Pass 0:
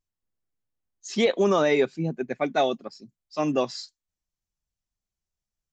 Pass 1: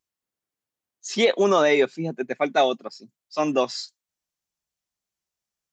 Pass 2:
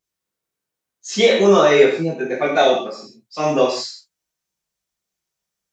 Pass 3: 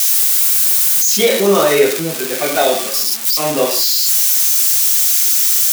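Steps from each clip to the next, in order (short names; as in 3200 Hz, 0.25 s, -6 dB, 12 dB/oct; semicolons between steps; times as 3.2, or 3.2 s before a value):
HPF 350 Hz 6 dB/oct; gain +4.5 dB
non-linear reverb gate 0.2 s falling, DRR -5.5 dB; gain -1 dB
switching spikes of -8 dBFS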